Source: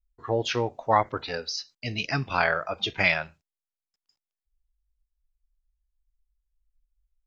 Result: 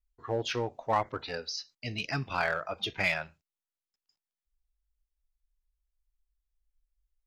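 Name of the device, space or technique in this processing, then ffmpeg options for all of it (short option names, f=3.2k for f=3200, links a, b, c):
parallel distortion: -filter_complex "[0:a]asplit=2[a][b];[b]asoftclip=type=hard:threshold=-22dB,volume=-5dB[c];[a][c]amix=inputs=2:normalize=0,volume=-8.5dB"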